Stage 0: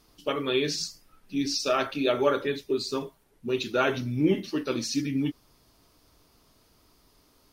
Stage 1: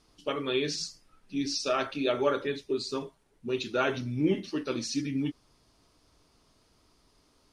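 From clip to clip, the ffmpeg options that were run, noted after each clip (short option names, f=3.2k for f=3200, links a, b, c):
-af "lowpass=f=10k:w=0.5412,lowpass=f=10k:w=1.3066,volume=-3dB"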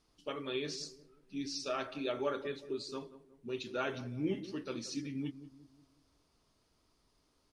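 -filter_complex "[0:a]asplit=2[a][b];[b]adelay=181,lowpass=f=820:p=1,volume=-13dB,asplit=2[c][d];[d]adelay=181,lowpass=f=820:p=1,volume=0.46,asplit=2[e][f];[f]adelay=181,lowpass=f=820:p=1,volume=0.46,asplit=2[g][h];[h]adelay=181,lowpass=f=820:p=1,volume=0.46,asplit=2[i][j];[j]adelay=181,lowpass=f=820:p=1,volume=0.46[k];[a][c][e][g][i][k]amix=inputs=6:normalize=0,volume=-8.5dB"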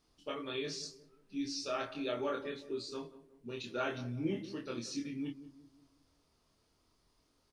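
-filter_complex "[0:a]asplit=2[a][b];[b]adelay=25,volume=-2.5dB[c];[a][c]amix=inputs=2:normalize=0,volume=-2dB"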